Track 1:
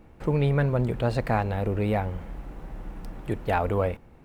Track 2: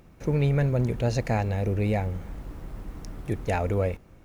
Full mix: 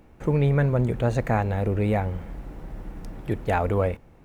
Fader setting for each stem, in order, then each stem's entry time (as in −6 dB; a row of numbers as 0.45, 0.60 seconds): −1.0, −7.5 decibels; 0.00, 0.00 seconds